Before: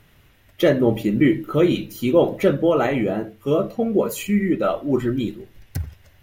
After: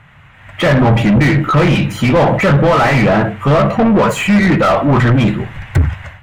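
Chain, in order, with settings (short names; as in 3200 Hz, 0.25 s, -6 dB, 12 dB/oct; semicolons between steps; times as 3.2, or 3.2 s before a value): EQ curve 140 Hz 0 dB, 370 Hz -23 dB, 880 Hz -8 dB, 2200 Hz -7 dB, 5300 Hz -20 dB, 7700 Hz -9 dB, 12000 Hz -22 dB; AGC gain up to 15 dB; overdrive pedal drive 33 dB, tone 1100 Hz, clips at -2 dBFS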